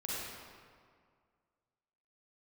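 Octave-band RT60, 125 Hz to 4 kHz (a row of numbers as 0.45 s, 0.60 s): 2.1 s, 2.0 s, 2.0 s, 2.0 s, 1.6 s, 1.3 s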